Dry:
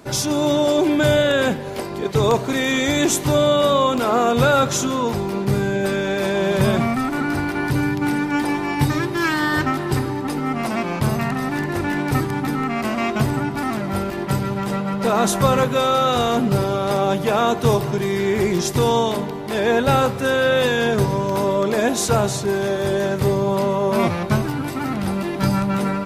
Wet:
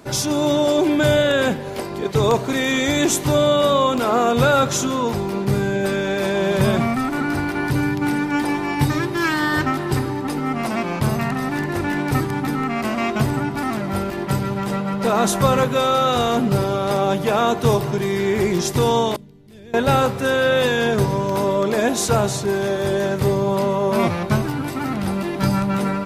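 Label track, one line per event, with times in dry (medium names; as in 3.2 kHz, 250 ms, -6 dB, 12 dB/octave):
19.160000	19.740000	amplifier tone stack bass-middle-treble 10-0-1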